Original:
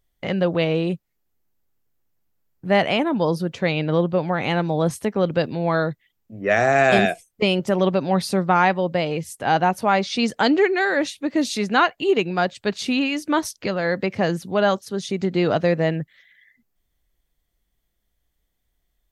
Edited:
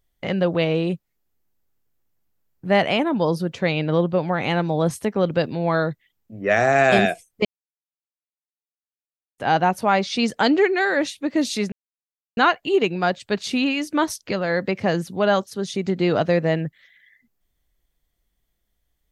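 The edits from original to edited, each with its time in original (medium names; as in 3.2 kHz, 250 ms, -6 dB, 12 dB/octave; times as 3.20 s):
7.45–9.38 s: mute
11.72 s: insert silence 0.65 s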